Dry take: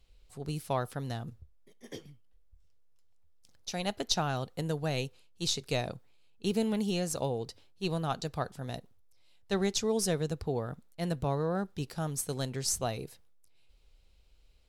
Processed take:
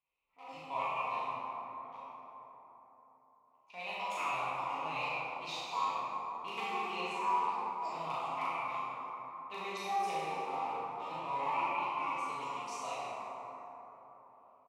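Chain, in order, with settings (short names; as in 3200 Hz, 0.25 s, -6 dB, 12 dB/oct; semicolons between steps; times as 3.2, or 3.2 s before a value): trilling pitch shifter +10 st, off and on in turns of 0.264 s; low-pass opened by the level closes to 1900 Hz, open at -27 dBFS; in parallel at -4 dB: bit-crush 6-bit; on the sum: wrapped overs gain 15 dB; double band-pass 1600 Hz, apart 1.2 oct; doubler 38 ms -2.5 dB; plate-style reverb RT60 4.1 s, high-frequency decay 0.35×, DRR -9 dB; gain -5.5 dB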